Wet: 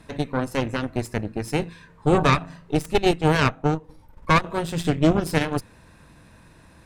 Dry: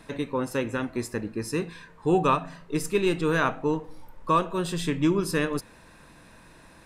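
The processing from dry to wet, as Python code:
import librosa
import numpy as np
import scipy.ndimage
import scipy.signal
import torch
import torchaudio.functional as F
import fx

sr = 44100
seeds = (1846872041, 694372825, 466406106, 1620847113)

y = fx.transient(x, sr, attack_db=1, sustain_db=-7, at=(2.93, 4.44))
y = fx.cheby_harmonics(y, sr, harmonics=(4, 7), levels_db=(-7, -31), full_scale_db=-10.5)
y = fx.peak_eq(y, sr, hz=84.0, db=9.0, octaves=2.3)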